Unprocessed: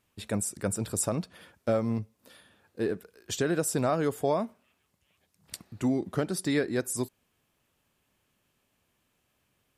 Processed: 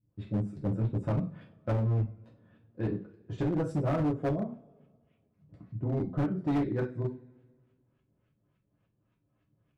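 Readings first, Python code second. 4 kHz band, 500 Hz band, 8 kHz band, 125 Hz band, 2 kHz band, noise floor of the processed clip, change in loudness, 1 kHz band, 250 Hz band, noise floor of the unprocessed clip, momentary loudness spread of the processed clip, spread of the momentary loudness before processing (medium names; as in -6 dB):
under -15 dB, -5.5 dB, under -30 dB, +5.5 dB, -9.0 dB, -76 dBFS, -2.0 dB, -4.5 dB, -1.0 dB, -75 dBFS, 11 LU, 12 LU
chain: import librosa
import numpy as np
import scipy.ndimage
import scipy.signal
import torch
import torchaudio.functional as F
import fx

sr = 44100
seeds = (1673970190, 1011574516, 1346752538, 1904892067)

y = fx.peak_eq(x, sr, hz=130.0, db=10.0, octaves=2.2)
y = fx.filter_lfo_lowpass(y, sr, shape='saw_up', hz=3.5, low_hz=200.0, high_hz=3100.0, q=0.76)
y = fx.rev_double_slope(y, sr, seeds[0], early_s=0.34, late_s=1.8, knee_db=-26, drr_db=-3.5)
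y = np.clip(10.0 ** (16.0 / 20.0) * y, -1.0, 1.0) / 10.0 ** (16.0 / 20.0)
y = y * librosa.db_to_amplitude(-8.5)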